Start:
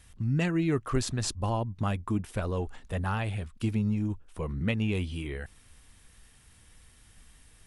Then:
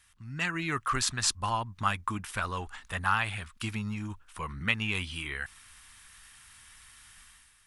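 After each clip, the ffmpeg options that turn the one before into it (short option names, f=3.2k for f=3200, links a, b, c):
-af "dynaudnorm=f=120:g=7:m=10dB,lowshelf=f=780:t=q:w=1.5:g=-13,volume=-3.5dB"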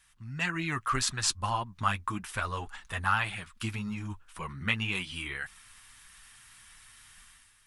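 -af "flanger=delay=4.9:depth=4.8:regen=-24:speed=1.8:shape=triangular,volume=3dB"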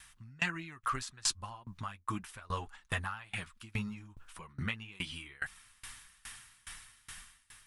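-af "acompressor=threshold=-46dB:ratio=2,aeval=exprs='val(0)*pow(10,-26*if(lt(mod(2.4*n/s,1),2*abs(2.4)/1000),1-mod(2.4*n/s,1)/(2*abs(2.4)/1000),(mod(2.4*n/s,1)-2*abs(2.4)/1000)/(1-2*abs(2.4)/1000))/20)':c=same,volume=10.5dB"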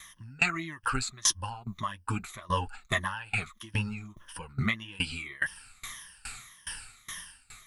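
-af "afftfilt=real='re*pow(10,15/40*sin(2*PI*(1.2*log(max(b,1)*sr/1024/100)/log(2)-(-1.7)*(pts-256)/sr)))':imag='im*pow(10,15/40*sin(2*PI*(1.2*log(max(b,1)*sr/1024/100)/log(2)-(-1.7)*(pts-256)/sr)))':win_size=1024:overlap=0.75,volume=5dB"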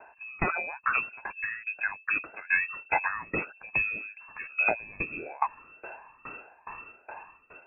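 -af "lowpass=f=2.3k:t=q:w=0.5098,lowpass=f=2.3k:t=q:w=0.6013,lowpass=f=2.3k:t=q:w=0.9,lowpass=f=2.3k:t=q:w=2.563,afreqshift=-2700,volume=3dB"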